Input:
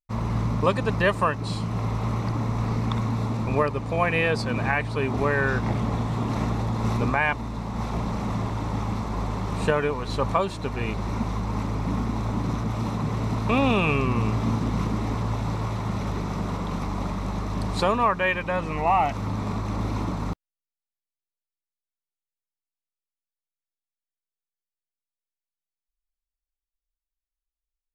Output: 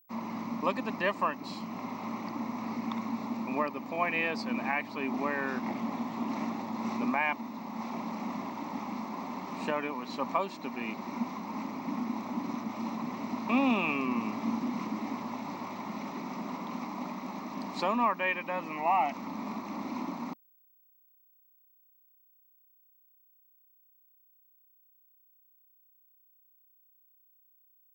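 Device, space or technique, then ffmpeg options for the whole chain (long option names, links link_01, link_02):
old television with a line whistle: -af "highpass=frequency=230:width=0.5412,highpass=frequency=230:width=1.3066,equalizer=frequency=240:width_type=q:width=4:gain=8,equalizer=frequency=450:width_type=q:width=4:gain=-10,equalizer=frequency=950:width_type=q:width=4:gain=3,equalizer=frequency=1500:width_type=q:width=4:gain=-7,equalizer=frequency=2200:width_type=q:width=4:gain=4,equalizer=frequency=3500:width_type=q:width=4:gain=-5,lowpass=frequency=6500:width=0.5412,lowpass=frequency=6500:width=1.3066,aeval=exprs='val(0)+0.00158*sin(2*PI*15734*n/s)':channel_layout=same,volume=-6dB"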